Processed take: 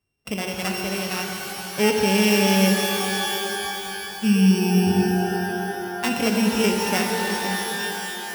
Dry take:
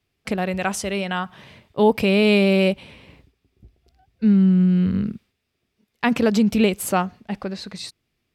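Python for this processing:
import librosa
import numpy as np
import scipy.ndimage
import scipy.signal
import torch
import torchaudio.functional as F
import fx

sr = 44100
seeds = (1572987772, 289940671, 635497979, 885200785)

y = np.r_[np.sort(x[:len(x) // 16 * 16].reshape(-1, 16), axis=1).ravel(), x[len(x) // 16 * 16:]]
y = fx.rev_shimmer(y, sr, seeds[0], rt60_s=3.7, semitones=12, shimmer_db=-2, drr_db=2.0)
y = y * librosa.db_to_amplitude(-5.0)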